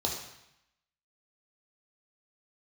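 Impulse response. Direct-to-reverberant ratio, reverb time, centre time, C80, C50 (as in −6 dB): −0.5 dB, 0.80 s, 35 ms, 7.5 dB, 4.5 dB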